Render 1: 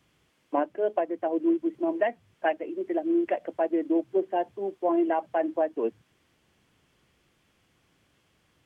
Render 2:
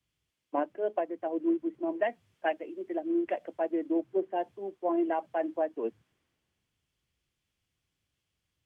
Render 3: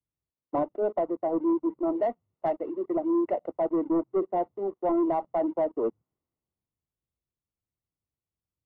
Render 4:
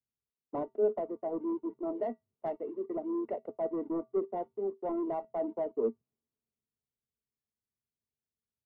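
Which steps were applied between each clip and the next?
three-band expander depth 40%; gain -4.5 dB
sample leveller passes 3; polynomial smoothing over 65 samples; gain -3.5 dB
resonator 130 Hz, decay 0.19 s, harmonics odd, mix 50%; small resonant body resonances 230/430 Hz, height 13 dB, ringing for 90 ms; gain -4.5 dB

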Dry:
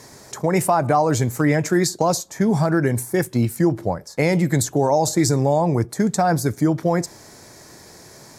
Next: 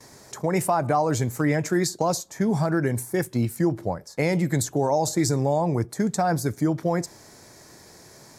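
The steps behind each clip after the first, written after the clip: gate with hold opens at -36 dBFS; gain -4.5 dB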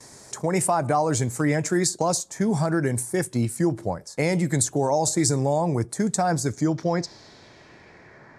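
low-pass sweep 9100 Hz -> 1800 Hz, 6.24–8.25

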